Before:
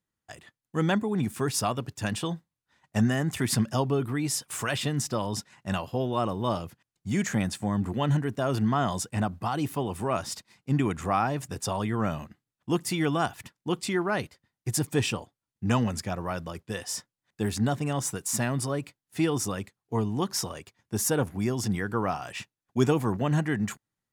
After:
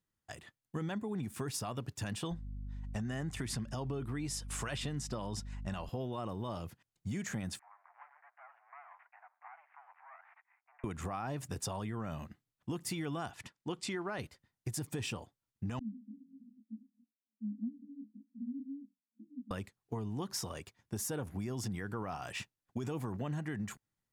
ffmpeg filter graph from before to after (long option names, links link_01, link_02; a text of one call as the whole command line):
ffmpeg -i in.wav -filter_complex "[0:a]asettb=1/sr,asplit=3[link_01][link_02][link_03];[link_01]atrim=end=2.314[link_04];[link_02]atrim=start=2.31:end=5.89,asetpts=PTS-STARTPTS,afade=type=in:duration=0.004:curve=qsin,afade=type=out:start_time=3.576:duration=0.004:curve=qsin,lowpass=10000,aeval=exprs='val(0)+0.00794*(sin(2*PI*50*n/s)+sin(2*PI*2*50*n/s)/2+sin(2*PI*3*50*n/s)/3+sin(2*PI*4*50*n/s)/4+sin(2*PI*5*50*n/s)/5)':channel_layout=same[link_05];[link_03]atrim=start=5.886[link_06];[link_04][link_05]acrossfade=duration=0.004:curve1=hsin:curve2=qsin[link_07];[link_07][link_06]acrossfade=duration=0.004:curve1=qsin:curve2=hsin,asettb=1/sr,asplit=3[link_08][link_09][link_10];[link_08]atrim=end=7.594[link_11];[link_09]atrim=start=7.59:end=10.84,asetpts=PTS-STARTPTS,afade=type=in:duration=0.004:curve=qsin,afade=type=out:start_time=3.246:duration=0.004:curve=qsin,acompressor=threshold=-38dB:ratio=5:attack=3.2:release=140:knee=1:detection=peak,aeval=exprs='max(val(0),0)':channel_layout=same,asuperpass=centerf=1300:order=12:qfactor=0.82[link_12];[link_10]atrim=start=10.836[link_13];[link_11][link_12]acrossfade=duration=0.004:curve1=hsin:curve2=qsin[link_14];[link_14][link_13]acrossfade=duration=0.004:curve1=qsin:curve2=hsin,asettb=1/sr,asplit=3[link_15][link_16][link_17];[link_15]atrim=end=13.304[link_18];[link_16]atrim=start=13.3:end=14.19,asetpts=PTS-STARTPTS,afade=type=in:duration=0.004:curve=qsin,afade=type=out:start_time=0.886:duration=0.004:curve=qsin,lowpass=8600,lowshelf=frequency=200:gain=-6.5[link_19];[link_17]atrim=start=14.186[link_20];[link_18][link_19]acrossfade=duration=0.004:curve1=hsin:curve2=qsin[link_21];[link_21][link_20]acrossfade=duration=0.004:curve1=qsin:curve2=hsin,asettb=1/sr,asplit=3[link_22][link_23][link_24];[link_22]atrim=end=15.794[link_25];[link_23]atrim=start=15.79:end=19.51,asetpts=PTS-STARTPTS,afade=type=in:duration=0.004:curve=qsin,afade=type=out:start_time=3.716:duration=0.004:curve=qsin,asuperpass=centerf=240:order=12:qfactor=3.3,flanger=delay=17:depth=8:speed=2[link_26];[link_24]atrim=start=19.506[link_27];[link_25][link_26]acrossfade=duration=0.004:curve1=hsin:curve2=qsin[link_28];[link_28][link_27]acrossfade=duration=0.004:curve1=qsin:curve2=hsin,lowshelf=frequency=81:gain=7,alimiter=limit=-19dB:level=0:latency=1:release=35,acompressor=threshold=-32dB:ratio=6,volume=-3dB" out.wav